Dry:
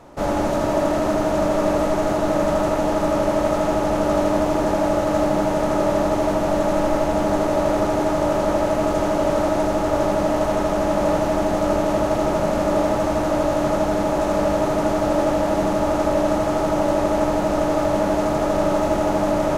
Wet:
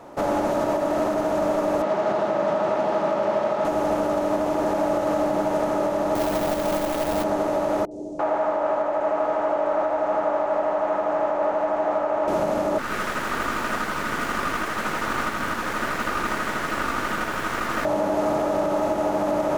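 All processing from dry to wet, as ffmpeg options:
-filter_complex "[0:a]asettb=1/sr,asplit=3[s0][s1][s2];[s0]atrim=end=1.824[s3];[s1]atrim=start=1.82:end=3.65,asetpts=PTS-STARTPTS,afade=t=in:d=0.004:c=qsin,afade=t=out:st=1.826:d=0.004:c=qsin,bandreject=f=60:t=h:w=6,bandreject=f=120:t=h:w=6,bandreject=f=180:t=h:w=6,bandreject=f=240:t=h:w=6,bandreject=f=300:t=h:w=6,bandreject=f=360:t=h:w=6,bandreject=f=420:t=h:w=6,bandreject=f=480:t=h:w=6,bandreject=f=540:t=h:w=6,bandreject=f=600:t=h:w=6,acrusher=bits=7:dc=4:mix=0:aa=0.000001,highpass=130,lowpass=4300[s4];[s2]atrim=start=3.646[s5];[s3][s4]acrossfade=d=0.004:c1=hsin:c2=qsin[s6];[s6][s5]acrossfade=d=0.004:c1=qsin:c2=hsin,asettb=1/sr,asplit=3[s7][s8][s9];[s7]atrim=end=6.154[s10];[s8]atrim=start=6.15:end=7.24,asetpts=PTS-STARTPTS,afade=t=in:d=0.004:c=qsin,afade=t=out:st=1.086:d=0.004:c=qsin,lowshelf=f=100:g=8,acrusher=bits=2:mode=log:mix=0:aa=0.000001[s11];[s9]atrim=start=7.236[s12];[s10][s11]acrossfade=d=0.004:c1=hsin:c2=qsin[s13];[s13][s12]acrossfade=d=0.004:c1=qsin:c2=hsin,asettb=1/sr,asplit=3[s14][s15][s16];[s14]atrim=end=7.854[s17];[s15]atrim=start=7.85:end=12.28,asetpts=PTS-STARTPTS,afade=t=in:d=0.004:c=qsin,afade=t=out:st=4.426:d=0.004:c=qsin,lowpass=f=7800:w=0.5412,lowpass=f=7800:w=1.3066,acrossover=split=400 2200:gain=0.178 1 0.224[s18][s19][s20];[s18][s19][s20]amix=inputs=3:normalize=0,acrossover=split=380|5800[s21][s22][s23];[s23]adelay=60[s24];[s22]adelay=340[s25];[s21][s25][s24]amix=inputs=3:normalize=0,atrim=end_sample=195363[s26];[s16]atrim=start=12.276[s27];[s17][s26]acrossfade=d=0.004:c1=hsin:c2=qsin[s28];[s28][s27]acrossfade=d=0.004:c1=qsin:c2=hsin,asettb=1/sr,asplit=3[s29][s30][s31];[s29]atrim=end=12.784[s32];[s30]atrim=start=12.78:end=17.85,asetpts=PTS-STARTPTS,afade=t=in:d=0.004:c=qsin,afade=t=out:st=5.066:d=0.004:c=qsin,highpass=540,aeval=exprs='abs(val(0))':c=same[s33];[s31]atrim=start=17.846[s34];[s32][s33]acrossfade=d=0.004:c1=hsin:c2=qsin[s35];[s35][s34]acrossfade=d=0.004:c1=qsin:c2=hsin,lowpass=f=1300:p=1,aemphasis=mode=production:type=bsi,alimiter=limit=0.112:level=0:latency=1:release=197,volume=1.78"

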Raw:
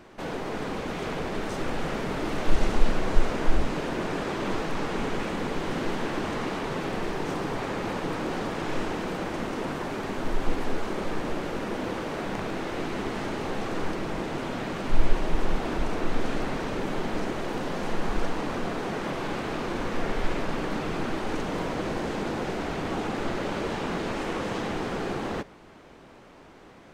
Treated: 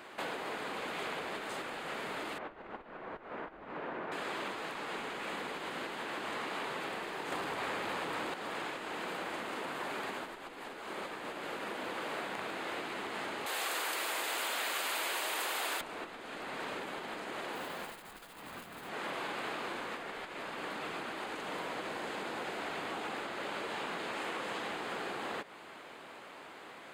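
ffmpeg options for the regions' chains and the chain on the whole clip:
-filter_complex "[0:a]asettb=1/sr,asplit=3[s0][s1][s2];[s0]atrim=end=2.384[s3];[s1]atrim=start=2.38:end=4.12,asetpts=PTS-STARTPTS,afade=t=in:d=0.004:c=qsin,afade=t=out:st=1.736:d=0.004:c=qsin,lowpass=1600,acompressor=threshold=0.0562:ratio=2:attack=3.2:release=140:knee=1:detection=peak[s4];[s2]atrim=start=4.116[s5];[s3][s4]acrossfade=d=0.004:c1=hsin:c2=qsin[s6];[s6][s5]acrossfade=d=0.004:c1=qsin:c2=hsin,asettb=1/sr,asplit=3[s7][s8][s9];[s7]atrim=end=7.324[s10];[s8]atrim=start=7.32:end=8.34,asetpts=PTS-STARTPTS,afade=t=in:d=0.004:c=qsin,afade=t=out:st=1.016:d=0.004:c=qsin,equalizer=f=65:w=1.1:g=8,aeval=exprs='0.141*sin(PI/2*2*val(0)/0.141)':c=same[s11];[s9]atrim=start=8.336[s12];[s10][s11]acrossfade=d=0.004:c1=hsin:c2=qsin[s13];[s13][s12]acrossfade=d=0.004:c1=qsin:c2=hsin,asettb=1/sr,asplit=3[s14][s15][s16];[s14]atrim=end=13.464[s17];[s15]atrim=start=13.46:end=15.81,asetpts=PTS-STARTPTS,afade=t=in:d=0.004:c=qsin,afade=t=out:st=2.346:d=0.004:c=qsin,highpass=310,aemphasis=mode=production:type=riaa[s18];[s16]atrim=start=15.806[s19];[s17][s18]acrossfade=d=0.004:c1=hsin:c2=qsin[s20];[s20][s19]acrossfade=d=0.004:c1=qsin:c2=hsin,asettb=1/sr,asplit=3[s21][s22][s23];[s21]atrim=end=17.554[s24];[s22]atrim=start=17.55:end=18.89,asetpts=PTS-STARTPTS,afade=t=in:d=0.004:c=qsin,afade=t=out:st=1.336:d=0.004:c=qsin,asubboost=boost=10.5:cutoff=180,acrusher=bits=6:mode=log:mix=0:aa=0.000001[s25];[s23]atrim=start=18.886[s26];[s24][s25]acrossfade=d=0.004:c1=hsin:c2=qsin[s27];[s27][s26]acrossfade=d=0.004:c1=qsin:c2=hsin,acompressor=threshold=0.0178:ratio=10,highpass=f=1100:p=1,equalizer=f=5700:t=o:w=0.31:g=-13,volume=2.11"

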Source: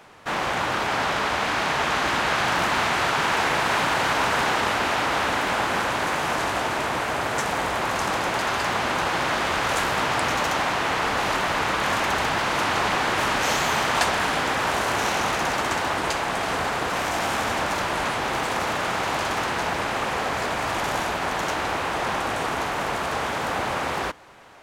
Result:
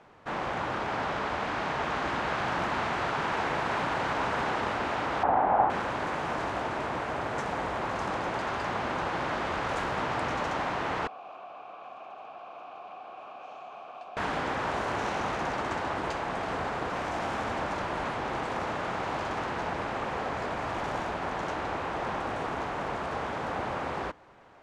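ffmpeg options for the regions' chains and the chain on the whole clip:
-filter_complex "[0:a]asettb=1/sr,asplit=3[s0][s1][s2];[s0]atrim=end=5.234[s3];[s1]atrim=start=5.23:end=5.7,asetpts=PTS-STARTPTS,afade=t=in:d=0.004:c=qsin,afade=t=out:st=0.466:d=0.004:c=qsin,lowpass=1500,equalizer=f=770:w=2.3:g=14[s4];[s2]atrim=start=5.696[s5];[s3][s4]acrossfade=d=0.004:c1=hsin:c2=qsin[s6];[s6][s5]acrossfade=d=0.004:c1=qsin:c2=hsin,asettb=1/sr,asplit=3[s7][s8][s9];[s7]atrim=end=11.074[s10];[s8]atrim=start=11.07:end=14.17,asetpts=PTS-STARTPTS,afade=t=in:d=0.004:c=qsin,afade=t=out:st=3.096:d=0.004:c=qsin,asplit=3[s11][s12][s13];[s11]bandpass=f=730:t=q:w=8,volume=1[s14];[s12]bandpass=f=1090:t=q:w=8,volume=0.501[s15];[s13]bandpass=f=2440:t=q:w=8,volume=0.355[s16];[s14][s15][s16]amix=inputs=3:normalize=0,lowshelf=f=69:g=-9.5,acrossover=split=350|3000[s17][s18][s19];[s18]acompressor=threshold=0.0178:ratio=6:attack=3.2:release=140:knee=2.83:detection=peak[s20];[s17][s20][s19]amix=inputs=3:normalize=0[s21];[s9]atrim=start=14.166[s22];[s10][s21]acrossfade=d=0.004:c1=hsin:c2=qsin[s23];[s23][s22]acrossfade=d=0.004:c1=qsin:c2=hsin,lowpass=7700,highshelf=f=2000:g=-11,volume=0.596"

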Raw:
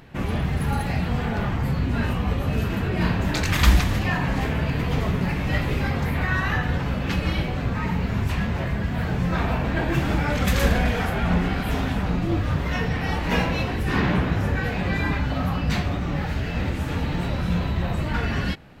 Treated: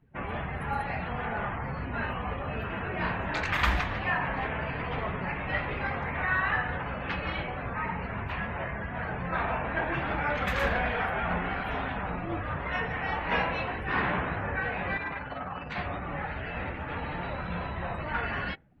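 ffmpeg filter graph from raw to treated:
-filter_complex "[0:a]asettb=1/sr,asplit=3[s0][s1][s2];[s0]atrim=end=14.974[s3];[s1]atrim=start=14.97:end=15.78,asetpts=PTS-STARTPTS,afade=t=in:d=0.004:c=qsin,afade=t=out:st=0.806:d=0.004:c=qsin,highpass=f=100:p=1,tremolo=f=20:d=0.519,asoftclip=type=hard:threshold=0.0562[s4];[s2]atrim=start=15.776[s5];[s3][s4]acrossfade=d=0.004:c1=hsin:c2=qsin[s6];[s6][s5]acrossfade=d=0.004:c1=qsin:c2=hsin,afftdn=nr=24:nf=-41,acrossover=split=550 2800:gain=0.224 1 0.141[s7][s8][s9];[s7][s8][s9]amix=inputs=3:normalize=0"

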